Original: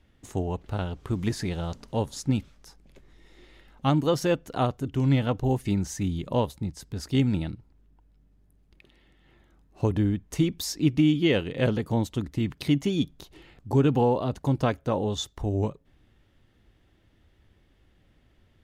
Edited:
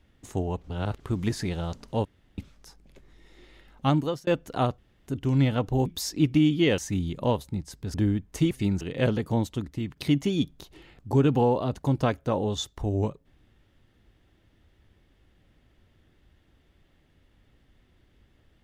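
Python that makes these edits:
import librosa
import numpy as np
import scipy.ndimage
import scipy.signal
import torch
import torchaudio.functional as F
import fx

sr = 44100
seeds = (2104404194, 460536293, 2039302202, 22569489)

y = fx.edit(x, sr, fx.reverse_span(start_s=0.64, length_s=0.36),
    fx.room_tone_fill(start_s=2.05, length_s=0.33),
    fx.fade_out_span(start_s=3.95, length_s=0.32),
    fx.insert_room_tone(at_s=4.78, length_s=0.29),
    fx.swap(start_s=5.57, length_s=0.3, other_s=10.49, other_length_s=0.92),
    fx.cut(start_s=7.03, length_s=2.89),
    fx.fade_out_to(start_s=11.98, length_s=0.58, floor_db=-6.5), tone=tone)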